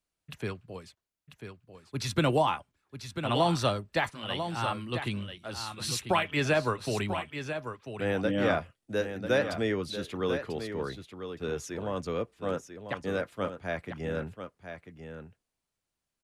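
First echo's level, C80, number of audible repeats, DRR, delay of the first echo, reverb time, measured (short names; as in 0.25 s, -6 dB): -9.0 dB, none, 1, none, 0.993 s, none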